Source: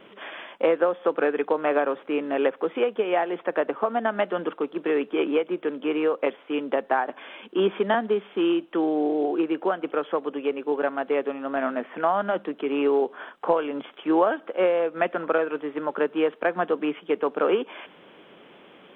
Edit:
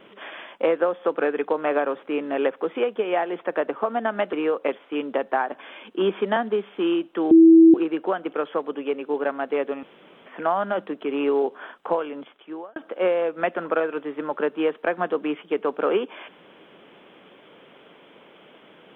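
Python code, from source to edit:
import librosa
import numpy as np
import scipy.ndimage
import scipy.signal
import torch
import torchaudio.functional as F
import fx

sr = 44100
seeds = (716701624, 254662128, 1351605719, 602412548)

y = fx.edit(x, sr, fx.cut(start_s=4.33, length_s=1.58),
    fx.bleep(start_s=8.89, length_s=0.43, hz=327.0, db=-7.5),
    fx.room_tone_fill(start_s=11.41, length_s=0.43),
    fx.fade_out_span(start_s=13.34, length_s=1.0), tone=tone)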